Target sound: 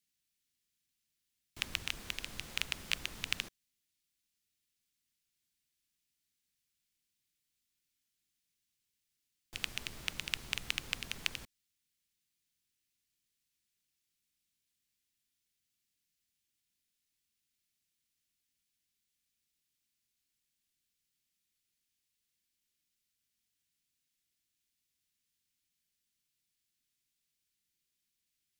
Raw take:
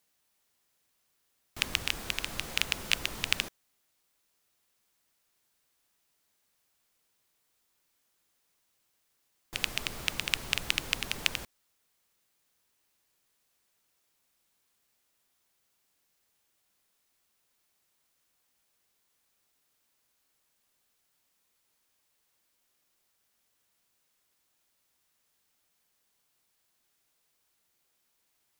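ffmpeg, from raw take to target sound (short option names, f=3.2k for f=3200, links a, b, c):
-filter_complex "[0:a]highshelf=f=10k:g=-4.5,acrossover=split=330|1800[a][b][c];[b]acrusher=bits=5:dc=4:mix=0:aa=0.000001[d];[a][d][c]amix=inputs=3:normalize=0,volume=-6.5dB"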